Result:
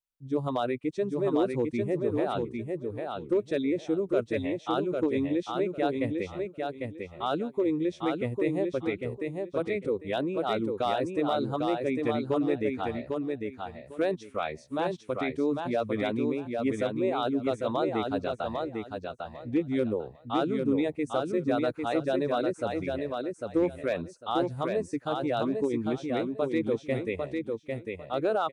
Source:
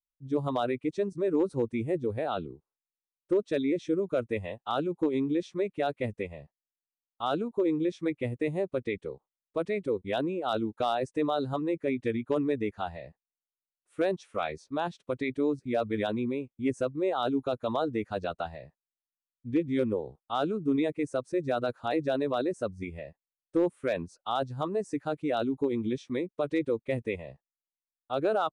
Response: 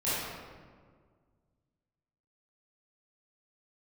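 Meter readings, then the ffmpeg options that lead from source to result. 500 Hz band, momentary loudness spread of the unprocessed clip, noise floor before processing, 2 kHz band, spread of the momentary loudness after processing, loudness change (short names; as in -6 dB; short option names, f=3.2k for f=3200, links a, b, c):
+1.5 dB, 7 LU, under -85 dBFS, +1.5 dB, 7 LU, +1.0 dB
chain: -af "aecho=1:1:800|1600|2400:0.631|0.133|0.0278"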